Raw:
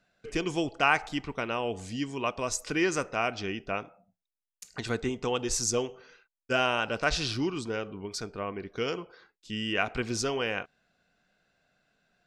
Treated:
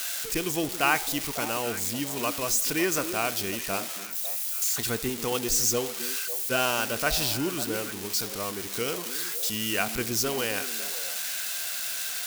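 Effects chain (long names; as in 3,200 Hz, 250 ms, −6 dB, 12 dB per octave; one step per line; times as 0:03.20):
spike at every zero crossing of −20.5 dBFS
echo through a band-pass that steps 275 ms, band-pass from 260 Hz, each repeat 1.4 octaves, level −7 dB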